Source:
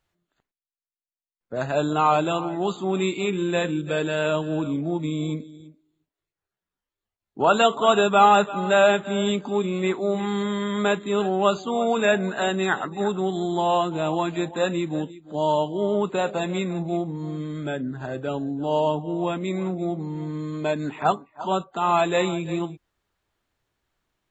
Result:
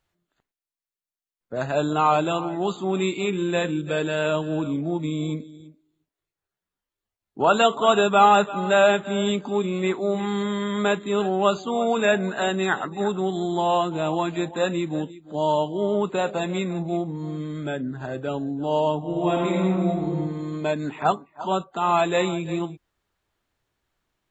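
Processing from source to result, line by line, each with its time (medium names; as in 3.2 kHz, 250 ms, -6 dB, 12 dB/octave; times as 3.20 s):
18.98–20.09 s: reverb throw, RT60 1.5 s, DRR -2.5 dB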